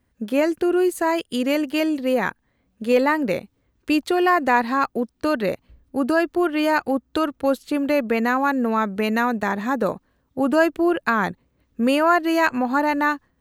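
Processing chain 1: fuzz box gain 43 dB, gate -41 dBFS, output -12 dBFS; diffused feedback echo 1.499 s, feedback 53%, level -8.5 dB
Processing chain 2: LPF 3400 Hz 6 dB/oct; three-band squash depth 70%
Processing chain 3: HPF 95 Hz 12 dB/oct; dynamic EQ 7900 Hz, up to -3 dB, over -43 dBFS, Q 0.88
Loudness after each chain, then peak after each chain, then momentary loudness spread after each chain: -15.0, -21.5, -21.5 LUFS; -5.0, -4.5, -4.5 dBFS; 5, 5, 7 LU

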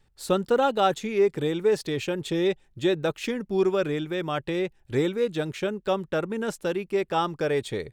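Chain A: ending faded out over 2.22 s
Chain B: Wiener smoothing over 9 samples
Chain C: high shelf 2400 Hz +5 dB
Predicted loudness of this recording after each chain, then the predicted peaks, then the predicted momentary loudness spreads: -27.0, -26.5, -26.0 LUFS; -10.0, -10.0, -9.0 dBFS; 11, 6, 6 LU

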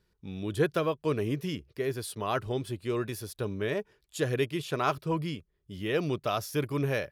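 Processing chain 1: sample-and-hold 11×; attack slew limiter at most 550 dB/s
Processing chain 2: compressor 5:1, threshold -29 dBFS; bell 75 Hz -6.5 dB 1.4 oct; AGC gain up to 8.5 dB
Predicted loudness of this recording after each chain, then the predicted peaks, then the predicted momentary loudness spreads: -32.0, -27.5 LUFS; -14.5, -11.0 dBFS; 9, 6 LU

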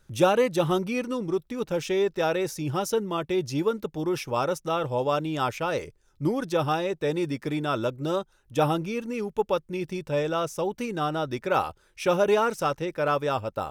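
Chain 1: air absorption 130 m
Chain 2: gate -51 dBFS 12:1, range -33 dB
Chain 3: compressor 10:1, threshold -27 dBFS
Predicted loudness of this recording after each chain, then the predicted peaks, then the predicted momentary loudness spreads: -27.5, -27.0, -32.5 LUFS; -8.5, -8.0, -17.5 dBFS; 7, 7, 3 LU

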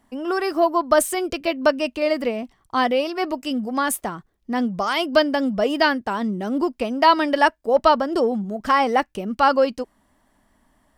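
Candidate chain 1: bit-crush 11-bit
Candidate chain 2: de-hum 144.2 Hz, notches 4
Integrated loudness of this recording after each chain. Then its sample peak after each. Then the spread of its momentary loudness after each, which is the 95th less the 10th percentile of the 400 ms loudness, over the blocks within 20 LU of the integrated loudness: -21.0, -21.0 LUFS; -3.5, -3.5 dBFS; 9, 9 LU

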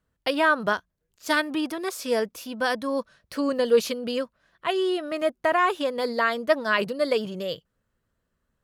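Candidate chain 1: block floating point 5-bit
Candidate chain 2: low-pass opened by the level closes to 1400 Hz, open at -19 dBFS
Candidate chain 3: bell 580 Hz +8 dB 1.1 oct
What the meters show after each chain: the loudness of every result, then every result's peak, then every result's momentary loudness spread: -25.5, -25.5, -21.0 LUFS; -8.5, -8.5, -3.0 dBFS; 10, 10, 10 LU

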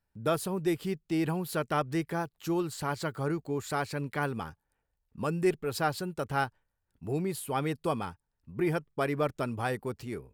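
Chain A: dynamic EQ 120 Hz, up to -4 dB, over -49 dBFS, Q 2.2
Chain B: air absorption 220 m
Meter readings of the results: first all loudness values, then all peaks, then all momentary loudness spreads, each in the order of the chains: -32.5, -33.0 LUFS; -15.0, -16.5 dBFS; 6, 6 LU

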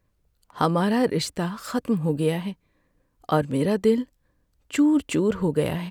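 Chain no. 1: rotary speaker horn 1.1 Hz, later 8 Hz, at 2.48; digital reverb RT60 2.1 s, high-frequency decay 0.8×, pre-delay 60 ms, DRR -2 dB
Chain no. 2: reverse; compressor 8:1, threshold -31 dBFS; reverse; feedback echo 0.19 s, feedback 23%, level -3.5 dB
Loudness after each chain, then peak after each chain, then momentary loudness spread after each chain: -22.5, -34.0 LUFS; -6.0, -20.0 dBFS; 10, 8 LU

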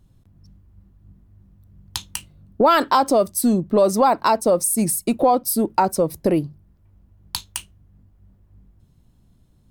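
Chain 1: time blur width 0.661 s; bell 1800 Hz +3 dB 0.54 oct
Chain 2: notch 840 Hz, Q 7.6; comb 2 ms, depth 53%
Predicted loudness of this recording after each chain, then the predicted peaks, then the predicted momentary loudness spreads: -27.0, -19.0 LUFS; -11.5, -3.5 dBFS; 20, 15 LU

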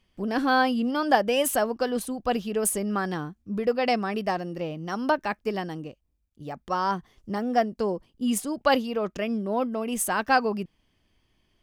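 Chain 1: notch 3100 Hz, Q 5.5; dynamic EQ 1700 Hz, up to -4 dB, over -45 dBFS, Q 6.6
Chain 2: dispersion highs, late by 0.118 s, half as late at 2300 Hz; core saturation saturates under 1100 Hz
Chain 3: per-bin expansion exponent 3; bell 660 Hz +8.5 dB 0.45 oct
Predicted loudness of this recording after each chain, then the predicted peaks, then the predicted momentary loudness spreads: -27.0, -27.5, -30.0 LUFS; -7.5, -8.0, -8.5 dBFS; 11, 11, 17 LU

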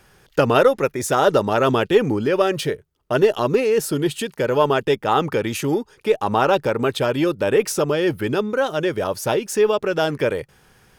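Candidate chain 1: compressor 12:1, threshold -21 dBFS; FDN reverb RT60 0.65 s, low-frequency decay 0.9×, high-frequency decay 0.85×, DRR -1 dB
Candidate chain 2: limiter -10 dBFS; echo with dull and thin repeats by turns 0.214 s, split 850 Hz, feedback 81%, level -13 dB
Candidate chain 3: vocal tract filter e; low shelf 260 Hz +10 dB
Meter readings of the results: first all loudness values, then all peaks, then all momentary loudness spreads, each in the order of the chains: -22.5, -21.0, -26.0 LUFS; -5.5, -8.0, -7.5 dBFS; 4, 4, 10 LU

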